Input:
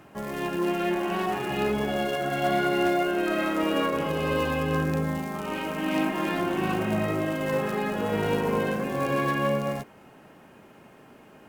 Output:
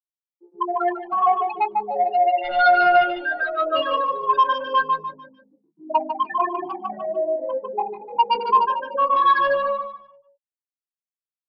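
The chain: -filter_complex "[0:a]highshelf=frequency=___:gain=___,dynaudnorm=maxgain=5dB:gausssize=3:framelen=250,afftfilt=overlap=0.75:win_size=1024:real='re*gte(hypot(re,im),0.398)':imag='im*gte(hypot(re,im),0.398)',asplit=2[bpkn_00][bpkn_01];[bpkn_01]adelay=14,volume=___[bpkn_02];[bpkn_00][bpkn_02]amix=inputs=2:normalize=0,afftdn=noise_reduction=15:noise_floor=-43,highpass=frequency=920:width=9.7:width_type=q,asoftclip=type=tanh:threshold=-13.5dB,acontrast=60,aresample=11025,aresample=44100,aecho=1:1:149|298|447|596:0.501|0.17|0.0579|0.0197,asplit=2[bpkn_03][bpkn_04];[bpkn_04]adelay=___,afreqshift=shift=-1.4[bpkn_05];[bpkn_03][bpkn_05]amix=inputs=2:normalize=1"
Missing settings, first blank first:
2000, 3.5, -7.5dB, 2.3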